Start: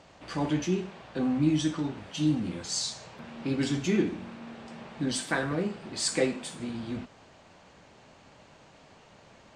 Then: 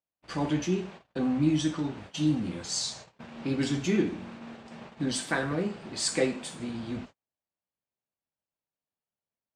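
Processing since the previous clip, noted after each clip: gate -44 dBFS, range -44 dB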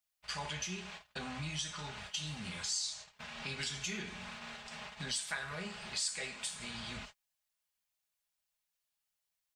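amplifier tone stack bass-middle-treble 10-0-10; comb 4.8 ms, depth 48%; compression 3:1, threshold -48 dBFS, peak gain reduction 17 dB; trim +9 dB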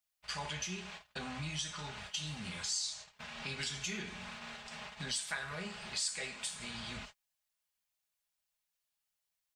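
no audible change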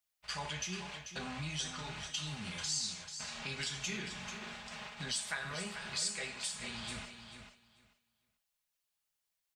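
feedback delay 440 ms, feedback 17%, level -9 dB

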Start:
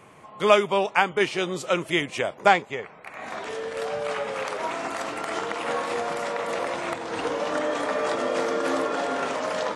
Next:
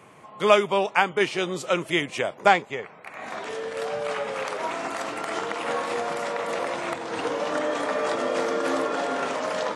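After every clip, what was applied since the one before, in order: high-pass 86 Hz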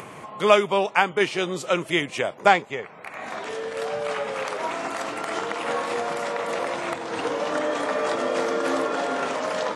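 upward compressor, threshold -32 dBFS; trim +1 dB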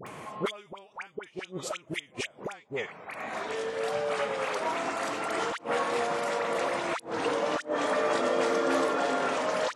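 inverted gate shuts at -13 dBFS, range -28 dB; phase dispersion highs, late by 67 ms, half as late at 1.2 kHz; trim -2 dB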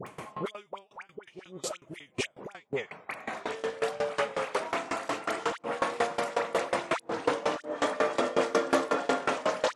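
sawtooth tremolo in dB decaying 5.5 Hz, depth 22 dB; trim +6 dB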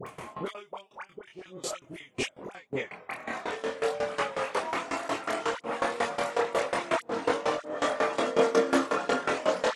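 chorus voices 4, 0.37 Hz, delay 24 ms, depth 2.3 ms; trim +4 dB

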